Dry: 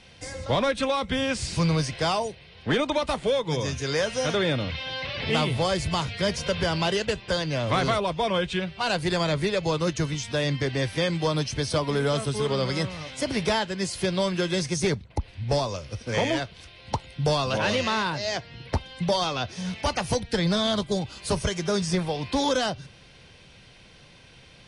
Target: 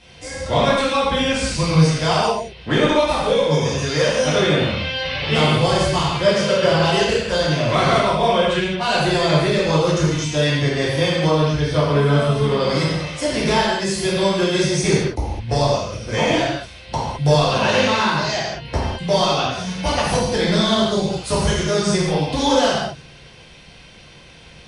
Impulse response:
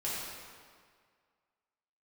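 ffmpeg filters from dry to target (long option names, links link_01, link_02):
-filter_complex "[0:a]asettb=1/sr,asplit=3[link_01][link_02][link_03];[link_01]atrim=end=6.124[link_04];[link_02]atrim=start=6.12:end=6.71,asetpts=PTS-STARTPTS,afade=type=in:duration=0.004:curve=qsin,afade=type=out:start_time=0.586:duration=0.004:curve=qsin,highpass=frequency=110:width=0.5412,highpass=frequency=110:width=1.3066,equalizer=frequency=540:width_type=q:width=4:gain=6,equalizer=frequency=1200:width_type=q:width=4:gain=7,equalizer=frequency=6200:width_type=q:width=4:gain=-4,lowpass=frequency=9200:width=0.5412,lowpass=frequency=9200:width=1.3066[link_05];[link_03]atrim=start=6.706[link_06];[link_04][link_05]acrossfade=duration=0.004:curve1=hsin:curve2=qsin[link_07];[link_07][link_06]acrossfade=duration=0.004:curve1=qsin:curve2=hsin,asettb=1/sr,asplit=3[link_08][link_09][link_10];[link_08]atrim=end=11.274[link_11];[link_09]atrim=start=11.27:end=12.6,asetpts=PTS-STARTPTS,afade=type=in:duration=0.004:curve=qsin,afade=type=out:start_time=1.326:duration=0.004:curve=qsin,acrossover=split=3700[link_12][link_13];[link_13]acompressor=threshold=-49dB:ratio=4:attack=1:release=60[link_14];[link_12][link_14]amix=inputs=2:normalize=0[link_15];[link_10]atrim=start=12.596[link_16];[link_11][link_15]acrossfade=duration=0.004:curve1=hsin:curve2=qsin[link_17];[link_17][link_16]acrossfade=duration=0.004:curve1=qsin:curve2=hsin[link_18];[1:a]atrim=start_sample=2205,afade=type=out:start_time=0.29:duration=0.01,atrim=end_sample=13230,asetrate=48510,aresample=44100[link_19];[link_18][link_19]afir=irnorm=-1:irlink=0,volume=4.5dB"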